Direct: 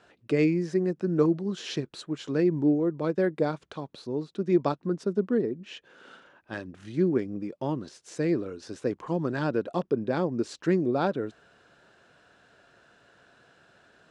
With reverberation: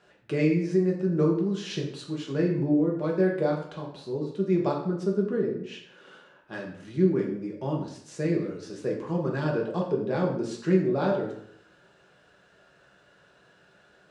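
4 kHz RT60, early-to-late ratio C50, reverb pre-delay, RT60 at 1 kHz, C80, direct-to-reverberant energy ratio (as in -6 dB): 0.50 s, 5.5 dB, 3 ms, 0.70 s, 8.5 dB, -2.0 dB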